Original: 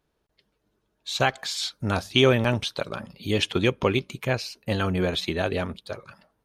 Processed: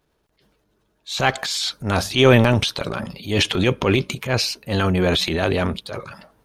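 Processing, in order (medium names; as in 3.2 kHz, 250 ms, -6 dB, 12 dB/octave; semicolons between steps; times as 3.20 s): transient shaper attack -9 dB, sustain +7 dB; trim +6.5 dB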